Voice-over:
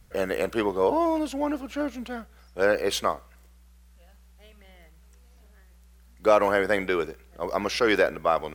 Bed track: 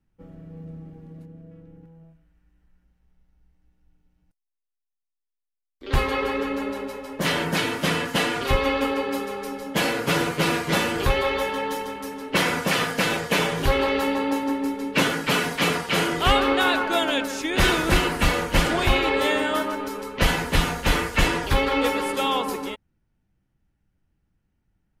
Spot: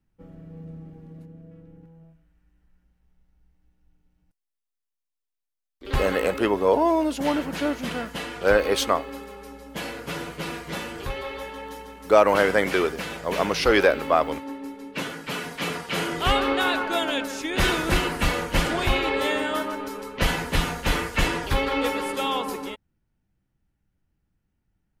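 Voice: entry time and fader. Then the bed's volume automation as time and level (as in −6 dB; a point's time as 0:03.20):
5.85 s, +3.0 dB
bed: 0:05.81 −1 dB
0:06.48 −10 dB
0:15.18 −10 dB
0:16.30 −2.5 dB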